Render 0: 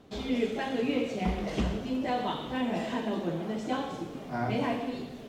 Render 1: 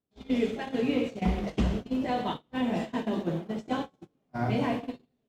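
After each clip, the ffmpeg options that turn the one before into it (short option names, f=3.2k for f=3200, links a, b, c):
-af "equalizer=f=99:w=0.43:g=4.5,agate=range=-35dB:threshold=-30dB:ratio=16:detection=peak"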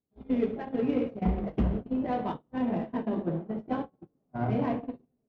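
-af "adynamicsmooth=sensitivity=1:basefreq=1.1k"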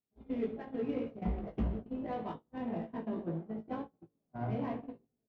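-filter_complex "[0:a]asplit=2[a][b];[b]adelay=18,volume=-6dB[c];[a][c]amix=inputs=2:normalize=0,volume=-8.5dB"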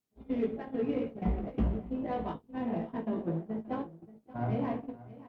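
-af "aecho=1:1:579:0.133,volume=4dB" -ar 48000 -c:a libopus -b:a 48k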